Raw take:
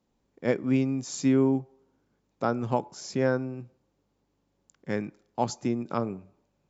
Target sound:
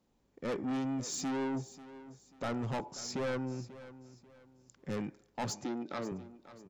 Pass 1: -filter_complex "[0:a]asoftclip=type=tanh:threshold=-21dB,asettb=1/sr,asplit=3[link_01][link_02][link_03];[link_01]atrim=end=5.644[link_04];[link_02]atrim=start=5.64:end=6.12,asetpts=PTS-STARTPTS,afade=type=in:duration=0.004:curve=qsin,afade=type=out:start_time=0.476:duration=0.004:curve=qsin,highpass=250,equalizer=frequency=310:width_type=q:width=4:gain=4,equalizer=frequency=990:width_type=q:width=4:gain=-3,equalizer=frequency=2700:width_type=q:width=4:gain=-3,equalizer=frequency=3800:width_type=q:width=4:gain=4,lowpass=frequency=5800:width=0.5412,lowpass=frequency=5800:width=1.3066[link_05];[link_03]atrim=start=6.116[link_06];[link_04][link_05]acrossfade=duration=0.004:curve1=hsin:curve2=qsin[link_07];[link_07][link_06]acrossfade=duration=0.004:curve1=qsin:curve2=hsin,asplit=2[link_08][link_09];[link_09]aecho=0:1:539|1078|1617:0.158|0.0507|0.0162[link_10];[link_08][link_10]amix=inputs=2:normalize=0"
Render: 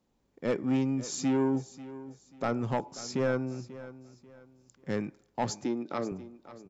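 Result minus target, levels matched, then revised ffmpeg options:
soft clipping: distortion −8 dB
-filter_complex "[0:a]asoftclip=type=tanh:threshold=-31.5dB,asettb=1/sr,asplit=3[link_01][link_02][link_03];[link_01]atrim=end=5.644[link_04];[link_02]atrim=start=5.64:end=6.12,asetpts=PTS-STARTPTS,afade=type=in:duration=0.004:curve=qsin,afade=type=out:start_time=0.476:duration=0.004:curve=qsin,highpass=250,equalizer=frequency=310:width_type=q:width=4:gain=4,equalizer=frequency=990:width_type=q:width=4:gain=-3,equalizer=frequency=2700:width_type=q:width=4:gain=-3,equalizer=frequency=3800:width_type=q:width=4:gain=4,lowpass=frequency=5800:width=0.5412,lowpass=frequency=5800:width=1.3066[link_05];[link_03]atrim=start=6.116[link_06];[link_04][link_05]acrossfade=duration=0.004:curve1=hsin:curve2=qsin[link_07];[link_07][link_06]acrossfade=duration=0.004:curve1=qsin:curve2=hsin,asplit=2[link_08][link_09];[link_09]aecho=0:1:539|1078|1617:0.158|0.0507|0.0162[link_10];[link_08][link_10]amix=inputs=2:normalize=0"

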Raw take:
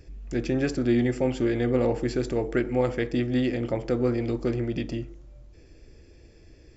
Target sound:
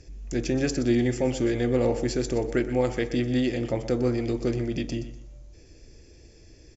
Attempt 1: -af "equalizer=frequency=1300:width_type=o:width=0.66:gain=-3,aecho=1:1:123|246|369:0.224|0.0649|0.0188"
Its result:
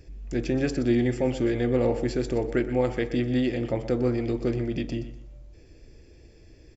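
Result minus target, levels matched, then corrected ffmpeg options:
8,000 Hz band −8.5 dB
-af "lowpass=frequency=6600:width_type=q:width=3.4,equalizer=frequency=1300:width_type=o:width=0.66:gain=-3,aecho=1:1:123|246|369:0.224|0.0649|0.0188"

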